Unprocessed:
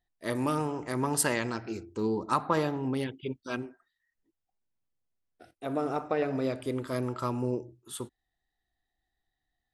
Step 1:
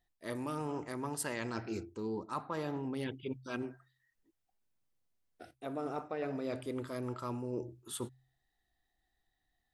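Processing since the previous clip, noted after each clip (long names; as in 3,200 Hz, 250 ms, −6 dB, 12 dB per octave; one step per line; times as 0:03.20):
reversed playback
downward compressor 6 to 1, threshold −37 dBFS, peak gain reduction 15 dB
reversed playback
hum removal 64.76 Hz, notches 2
level +2 dB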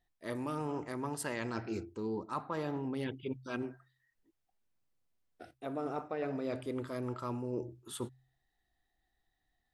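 high-shelf EQ 4,600 Hz −5 dB
level +1 dB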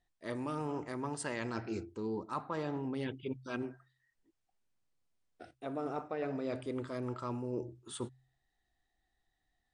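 MP3 112 kbit/s 22,050 Hz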